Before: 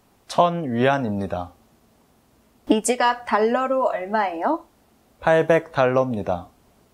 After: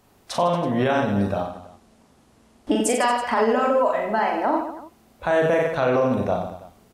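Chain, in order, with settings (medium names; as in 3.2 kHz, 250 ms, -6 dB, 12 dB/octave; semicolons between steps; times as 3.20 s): 1.42–2.71 s: low-pass 11 kHz 24 dB/octave; on a send: reverse bouncing-ball echo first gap 40 ms, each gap 1.25×, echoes 5; on the sum: peak limiter -11 dBFS, peak gain reduction 7.5 dB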